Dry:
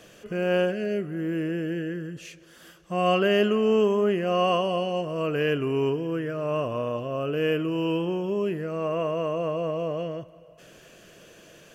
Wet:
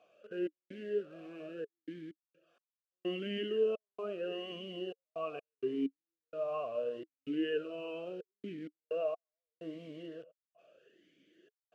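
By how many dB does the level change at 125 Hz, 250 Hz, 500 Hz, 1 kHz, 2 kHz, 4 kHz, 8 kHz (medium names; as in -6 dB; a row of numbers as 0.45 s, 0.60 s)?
-22.0 dB, -13.0 dB, -12.5 dB, -19.0 dB, -16.5 dB, -12.5 dB, no reading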